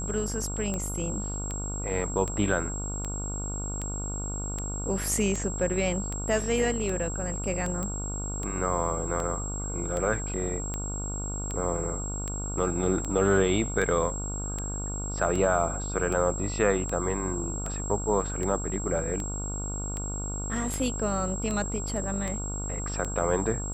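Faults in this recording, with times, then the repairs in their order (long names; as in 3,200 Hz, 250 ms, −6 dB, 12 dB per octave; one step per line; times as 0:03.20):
mains buzz 50 Hz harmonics 29 −34 dBFS
scratch tick 78 rpm −19 dBFS
whistle 7,600 Hz −35 dBFS
0:07.83: click −19 dBFS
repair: click removal
notch filter 7,600 Hz, Q 30
hum removal 50 Hz, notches 29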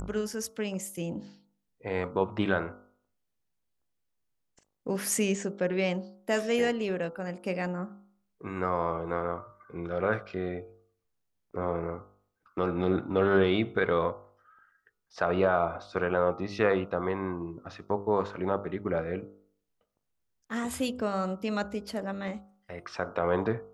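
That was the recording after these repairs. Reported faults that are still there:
none of them is left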